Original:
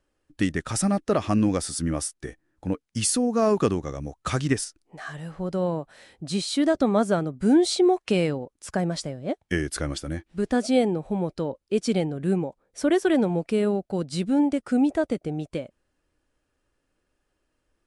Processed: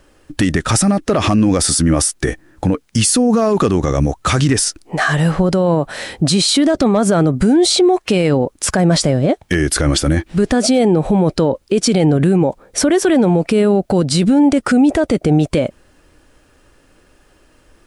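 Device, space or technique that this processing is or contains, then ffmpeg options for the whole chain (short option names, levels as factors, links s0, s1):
loud club master: -af "acompressor=threshold=0.0562:ratio=2,asoftclip=type=hard:threshold=0.141,alimiter=level_in=26.6:limit=0.891:release=50:level=0:latency=1,volume=0.562"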